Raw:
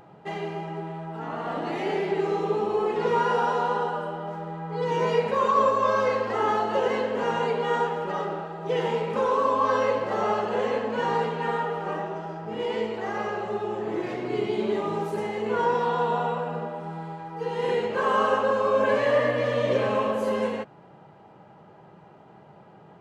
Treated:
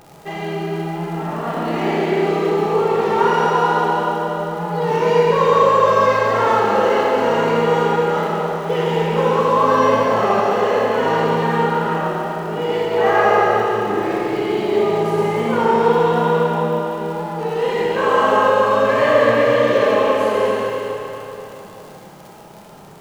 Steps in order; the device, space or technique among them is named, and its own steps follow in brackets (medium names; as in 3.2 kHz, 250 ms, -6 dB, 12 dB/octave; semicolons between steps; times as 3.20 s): warped LP (warped record 33 1/3 rpm, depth 100 cents; crackle 100 per s -37 dBFS; pink noise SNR 39 dB); 12.92–13.48 s: peaking EQ 1.1 kHz +9.5 dB 3 oct; Schroeder reverb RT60 3.4 s, combs from 27 ms, DRR -3.5 dB; trim +4 dB